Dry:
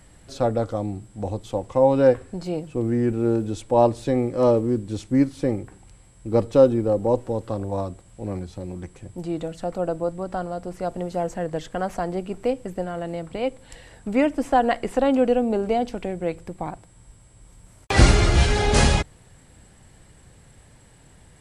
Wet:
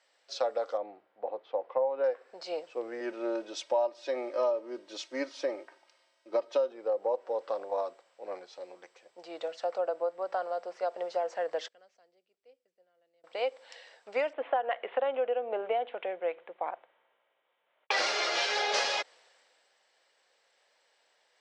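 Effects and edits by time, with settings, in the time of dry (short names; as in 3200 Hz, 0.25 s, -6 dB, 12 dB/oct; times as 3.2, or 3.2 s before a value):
0.77–2.04 air absorption 410 m
3–6.72 comb 3.2 ms, depth 71%
11.68–13.24 passive tone stack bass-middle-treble 10-0-1
14.33–17.91 steep low-pass 3500 Hz 72 dB/oct
whole clip: elliptic band-pass 520–5500 Hz, stop band 80 dB; compressor 8:1, threshold -27 dBFS; three-band expander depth 40%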